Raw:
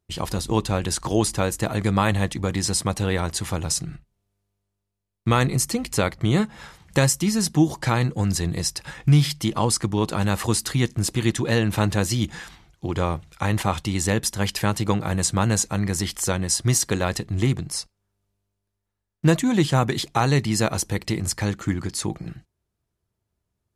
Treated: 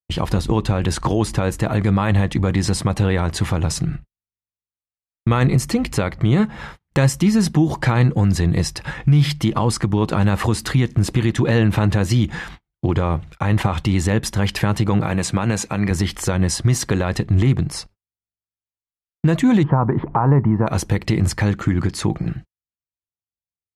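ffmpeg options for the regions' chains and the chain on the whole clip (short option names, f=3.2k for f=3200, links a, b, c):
-filter_complex "[0:a]asettb=1/sr,asplit=3[a][b][c];[a]atrim=end=15.064[d];[b]atrim=start=15.06:end=15.91,asetpts=PTS-STARTPTS,afade=t=in:d=0.004:c=qsin,afade=t=out:st=0.846:d=0.004:c=qsin,highpass=f=200:p=1,equalizer=f=2.4k:w=7.6:g=7[e];[c]atrim=start=15.906[f];[d][e]acrossfade=d=0.004:c1=hsin:c2=qsin[g];[g][f]acrossfade=d=0.004:c1=qsin:c2=hsin,asettb=1/sr,asplit=3[h][i][j];[h]atrim=end=19.634[k];[i]atrim=start=19.63:end=20.67,asetpts=PTS-STARTPTS,afade=t=in:d=0.004:c=qsin,afade=t=out:st=1.036:d=0.004:c=qsin,lowpass=f=1.4k:w=0.5412,lowpass=f=1.4k:w=1.3066,equalizer=f=960:w=4.3:g=9.5,acompressor=mode=upward:threshold=-24dB:ratio=2.5:attack=3.2:release=140:knee=2.83:detection=peak[l];[j]atrim=start=20.666[m];[k][l]acrossfade=d=0.004:c1=hsin:c2=qsin[n];[n][m]acrossfade=d=0.004:c1=qsin:c2=hsin,agate=range=-39dB:threshold=-44dB:ratio=16:detection=peak,bass=f=250:g=3,treble=f=4k:g=-12,alimiter=limit=-16dB:level=0:latency=1:release=104,volume=8.5dB"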